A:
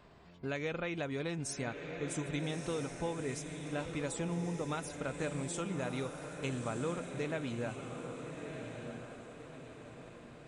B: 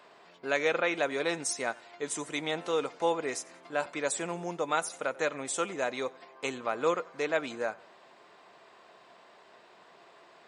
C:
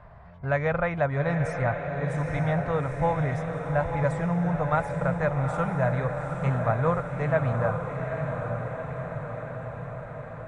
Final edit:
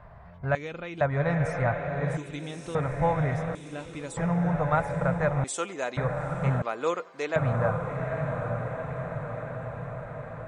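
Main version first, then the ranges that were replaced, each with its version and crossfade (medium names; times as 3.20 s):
C
0.55–1.01 s: from A
2.17–2.75 s: from A
3.55–4.17 s: from A
5.44–5.97 s: from B
6.62–7.36 s: from B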